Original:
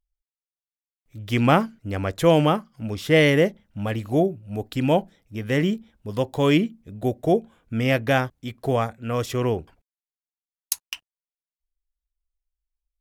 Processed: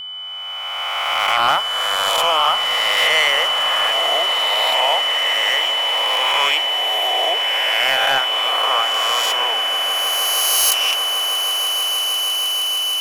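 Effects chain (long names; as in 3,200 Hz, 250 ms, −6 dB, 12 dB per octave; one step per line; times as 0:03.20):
peak hold with a rise ahead of every peak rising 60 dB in 1.90 s
high-pass filter 810 Hz 24 dB per octave
in parallel at −1.5 dB: downward compressor, threshold −33 dBFS, peak gain reduction 18.5 dB
on the sum: pitch vibrato 0.62 Hz 13 cents
soft clipping −12.5 dBFS, distortion −15 dB
steady tone 3,000 Hz −32 dBFS
on a send: echo that builds up and dies away 158 ms, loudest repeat 8, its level −15 dB
on the sum: level +4 dB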